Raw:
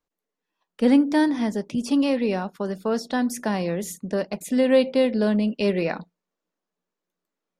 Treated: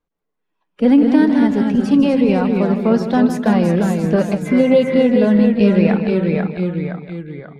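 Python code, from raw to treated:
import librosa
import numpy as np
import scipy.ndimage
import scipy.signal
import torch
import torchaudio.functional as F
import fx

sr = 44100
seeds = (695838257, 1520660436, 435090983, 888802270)

p1 = fx.spec_quant(x, sr, step_db=15)
p2 = p1 + fx.echo_single(p1, sr, ms=156, db=-11.0, dry=0)
p3 = fx.spec_repair(p2, sr, seeds[0], start_s=4.49, length_s=0.48, low_hz=890.0, high_hz=2500.0, source='after')
p4 = fx.echo_pitch(p3, sr, ms=142, semitones=-1, count=3, db_per_echo=-6.0)
p5 = fx.notch(p4, sr, hz=1800.0, q=18.0)
p6 = fx.rider(p5, sr, range_db=5, speed_s=0.5)
p7 = p5 + (p6 * 10.0 ** (0.5 / 20.0))
p8 = fx.bass_treble(p7, sr, bass_db=6, treble_db=-12)
y = p8 * 10.0 ** (-1.0 / 20.0)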